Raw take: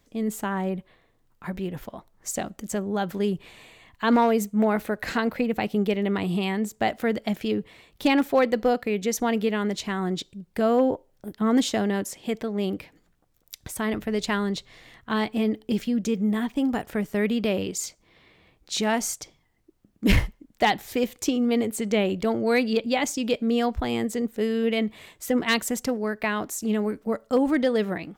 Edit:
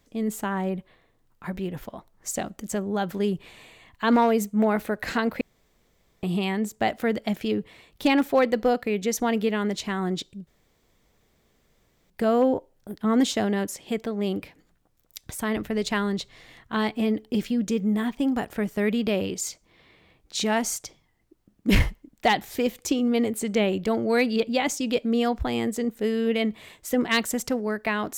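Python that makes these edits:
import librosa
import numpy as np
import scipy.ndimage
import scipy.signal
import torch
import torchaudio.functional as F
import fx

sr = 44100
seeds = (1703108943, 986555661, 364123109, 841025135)

y = fx.edit(x, sr, fx.room_tone_fill(start_s=5.41, length_s=0.82),
    fx.insert_room_tone(at_s=10.47, length_s=1.63), tone=tone)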